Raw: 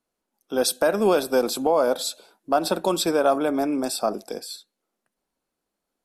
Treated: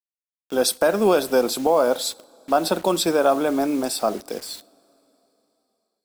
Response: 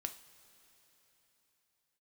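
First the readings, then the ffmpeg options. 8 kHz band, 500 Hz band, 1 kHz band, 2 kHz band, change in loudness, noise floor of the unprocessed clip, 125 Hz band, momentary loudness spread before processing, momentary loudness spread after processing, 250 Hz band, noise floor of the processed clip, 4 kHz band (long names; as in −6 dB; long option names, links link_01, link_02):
+2.0 dB, +2.0 dB, +2.0 dB, +2.0 dB, +1.5 dB, −83 dBFS, +2.0 dB, 14 LU, 13 LU, +1.5 dB, below −85 dBFS, +2.0 dB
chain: -filter_complex "[0:a]acrusher=bits=6:mix=0:aa=0.000001,asplit=2[link_01][link_02];[1:a]atrim=start_sample=2205[link_03];[link_02][link_03]afir=irnorm=-1:irlink=0,volume=-10dB[link_04];[link_01][link_04]amix=inputs=2:normalize=0"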